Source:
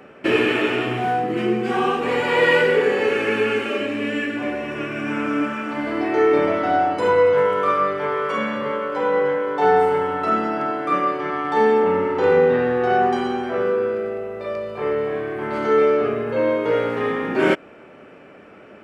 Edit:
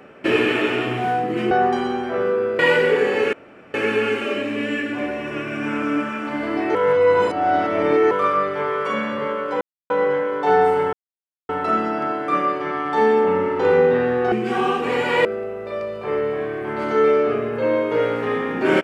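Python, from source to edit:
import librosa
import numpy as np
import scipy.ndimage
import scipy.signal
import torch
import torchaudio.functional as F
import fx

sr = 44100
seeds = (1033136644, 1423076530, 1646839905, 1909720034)

y = fx.edit(x, sr, fx.swap(start_s=1.51, length_s=0.93, other_s=12.91, other_length_s=1.08),
    fx.insert_room_tone(at_s=3.18, length_s=0.41),
    fx.reverse_span(start_s=6.19, length_s=1.36),
    fx.insert_silence(at_s=9.05, length_s=0.29),
    fx.insert_silence(at_s=10.08, length_s=0.56), tone=tone)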